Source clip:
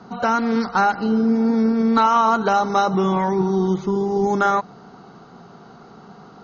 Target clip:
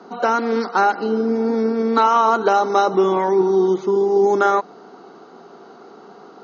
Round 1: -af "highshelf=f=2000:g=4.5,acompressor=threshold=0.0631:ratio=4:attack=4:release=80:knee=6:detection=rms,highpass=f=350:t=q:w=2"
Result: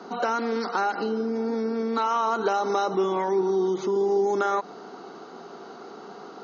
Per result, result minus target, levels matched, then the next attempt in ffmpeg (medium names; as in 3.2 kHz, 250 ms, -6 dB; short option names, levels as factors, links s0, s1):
compression: peak gain reduction +11.5 dB; 4 kHz band +2.5 dB
-af "highpass=f=350:t=q:w=2,highshelf=f=2000:g=4.5"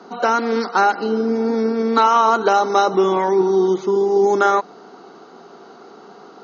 4 kHz band +3.0 dB
-af "highpass=f=350:t=q:w=2"